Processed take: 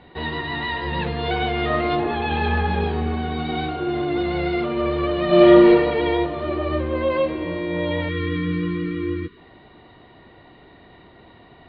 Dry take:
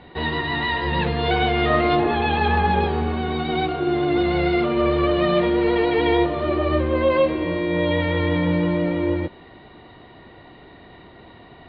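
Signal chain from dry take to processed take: 2.27–4.02 s: doubling 39 ms -6 dB; 5.26–5.69 s: reverb throw, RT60 1.3 s, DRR -7.5 dB; 8.09–9.37 s: spectral selection erased 490–990 Hz; trim -3 dB

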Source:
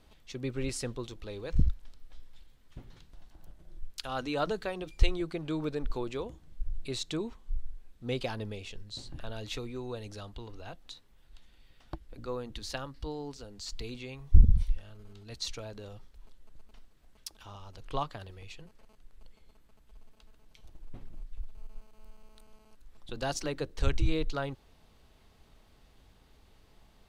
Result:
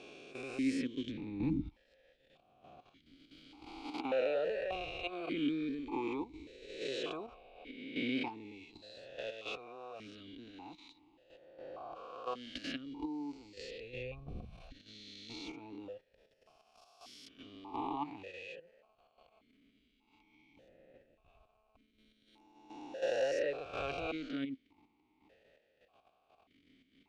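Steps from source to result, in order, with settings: reverse spectral sustain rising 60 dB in 1.80 s; level held to a coarse grid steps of 11 dB; stepped vowel filter 1.7 Hz; trim +10 dB

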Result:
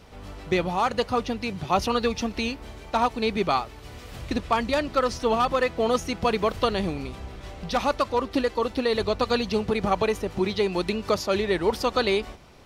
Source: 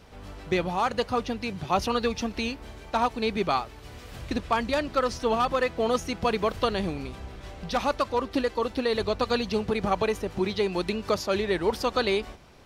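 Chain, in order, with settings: band-stop 1.6 kHz, Q 22; trim +2 dB

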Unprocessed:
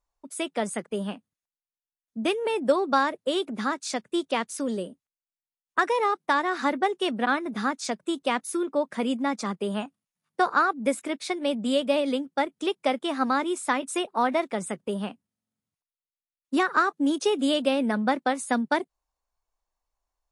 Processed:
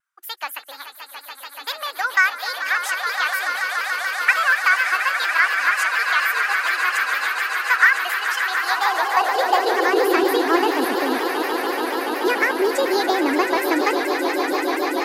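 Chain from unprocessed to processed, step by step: echo with a slow build-up 194 ms, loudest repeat 8, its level -10 dB; high-pass sweep 1.1 kHz -> 120 Hz, 11.46–14.97 s; speed mistake 33 rpm record played at 45 rpm; vibrato with a chosen wave saw down 4.2 Hz, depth 100 cents; trim +2 dB

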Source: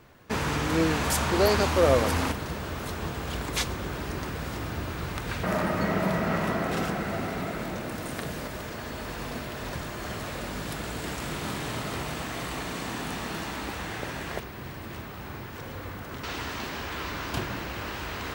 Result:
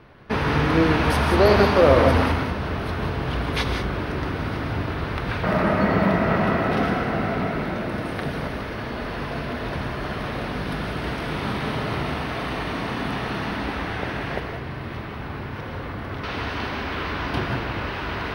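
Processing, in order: boxcar filter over 6 samples; gated-style reverb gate 210 ms rising, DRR 4 dB; trim +5.5 dB

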